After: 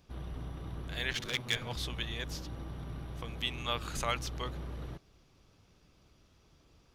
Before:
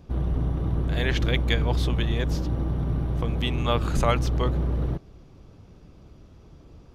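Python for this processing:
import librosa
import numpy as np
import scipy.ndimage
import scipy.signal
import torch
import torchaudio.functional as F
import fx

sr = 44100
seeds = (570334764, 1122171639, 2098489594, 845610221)

y = fx.lower_of_two(x, sr, delay_ms=8.2, at=(1.13, 1.76))
y = fx.tilt_shelf(y, sr, db=-7.5, hz=1100.0)
y = F.gain(torch.from_numpy(y), -9.0).numpy()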